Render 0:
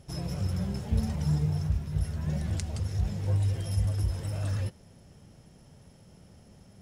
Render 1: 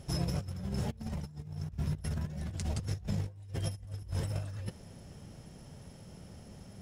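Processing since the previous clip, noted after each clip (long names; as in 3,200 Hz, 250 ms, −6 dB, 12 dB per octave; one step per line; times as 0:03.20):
compressor whose output falls as the input rises −34 dBFS, ratio −0.5
level −1.5 dB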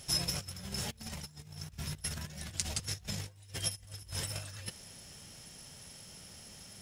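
tilt shelving filter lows −10 dB, about 1,300 Hz
level +2 dB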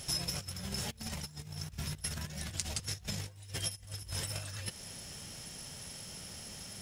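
downward compressor 2 to 1, threshold −43 dBFS, peak gain reduction 9 dB
level +5 dB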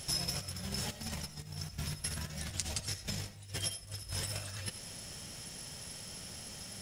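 comb and all-pass reverb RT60 0.44 s, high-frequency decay 0.45×, pre-delay 40 ms, DRR 10.5 dB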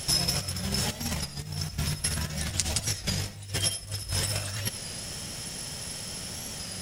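wow of a warped record 33 1/3 rpm, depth 100 cents
level +9 dB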